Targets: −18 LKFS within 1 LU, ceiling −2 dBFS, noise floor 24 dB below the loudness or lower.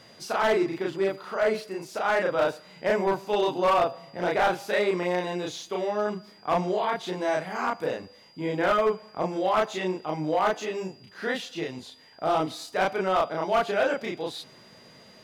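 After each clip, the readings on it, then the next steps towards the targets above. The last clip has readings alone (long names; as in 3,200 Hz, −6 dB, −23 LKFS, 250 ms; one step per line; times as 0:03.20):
share of clipped samples 0.9%; peaks flattened at −17.0 dBFS; interfering tone 4,800 Hz; level of the tone −55 dBFS; integrated loudness −27.0 LKFS; sample peak −17.0 dBFS; target loudness −18.0 LKFS
→ clipped peaks rebuilt −17 dBFS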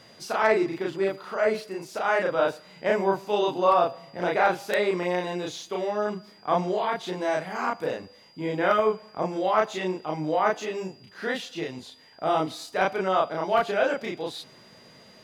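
share of clipped samples 0.0%; interfering tone 4,800 Hz; level of the tone −55 dBFS
→ notch filter 4,800 Hz, Q 30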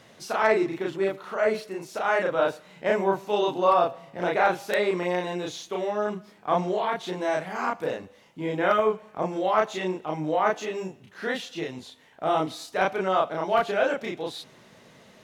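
interfering tone none found; integrated loudness −26.5 LKFS; sample peak −8.0 dBFS; target loudness −18.0 LKFS
→ level +8.5 dB
brickwall limiter −2 dBFS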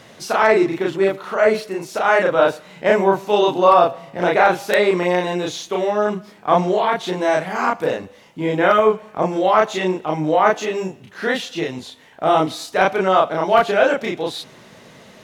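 integrated loudness −18.5 LKFS; sample peak −2.0 dBFS; background noise floor −46 dBFS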